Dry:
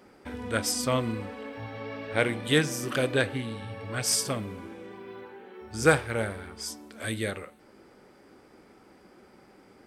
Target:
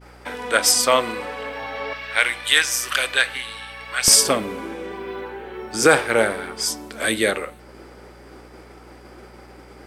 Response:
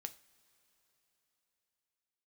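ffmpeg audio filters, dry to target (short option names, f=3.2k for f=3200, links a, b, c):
-af "agate=range=-33dB:threshold=-53dB:ratio=3:detection=peak,asetnsamples=n=441:p=0,asendcmd='1.93 highpass f 1400;4.08 highpass f 300',highpass=570,aeval=exprs='val(0)+0.001*(sin(2*PI*60*n/s)+sin(2*PI*2*60*n/s)/2+sin(2*PI*3*60*n/s)/3+sin(2*PI*4*60*n/s)/4+sin(2*PI*5*60*n/s)/5)':c=same,alimiter=level_in=14dB:limit=-1dB:release=50:level=0:latency=1,volume=-1dB"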